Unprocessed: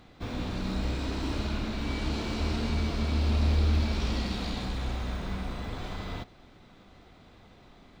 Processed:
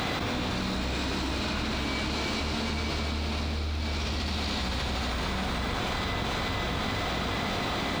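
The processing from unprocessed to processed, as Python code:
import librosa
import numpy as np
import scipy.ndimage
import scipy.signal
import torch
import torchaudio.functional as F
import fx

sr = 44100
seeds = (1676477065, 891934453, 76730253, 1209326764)

y = fx.highpass(x, sr, hz=160.0, slope=6)
y = fx.peak_eq(y, sr, hz=290.0, db=-5.0, octaves=2.6)
y = fx.echo_diffused(y, sr, ms=464, feedback_pct=43, wet_db=-6.5)
y = fx.env_flatten(y, sr, amount_pct=100)
y = y * librosa.db_to_amplitude(-1.5)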